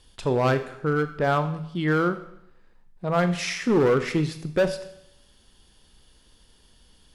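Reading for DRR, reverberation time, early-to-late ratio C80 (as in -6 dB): 9.5 dB, 0.75 s, 14.5 dB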